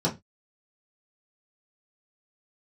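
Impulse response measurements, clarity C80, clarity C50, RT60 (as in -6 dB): 24.0 dB, 15.5 dB, 0.20 s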